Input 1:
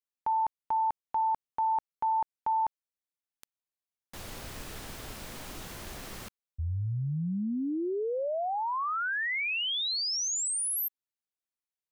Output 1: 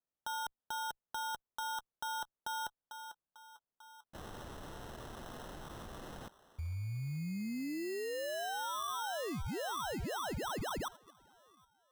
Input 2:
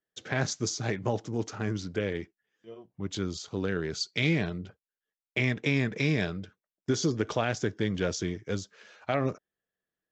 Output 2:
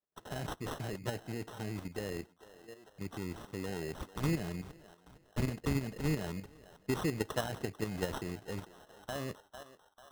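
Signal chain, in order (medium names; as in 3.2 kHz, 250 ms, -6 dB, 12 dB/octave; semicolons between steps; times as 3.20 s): single-diode clipper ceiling -13.5 dBFS; band-passed feedback delay 446 ms, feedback 64%, band-pass 1.2 kHz, level -12.5 dB; sample-and-hold 19×; level held to a coarse grid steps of 9 dB; trim -2.5 dB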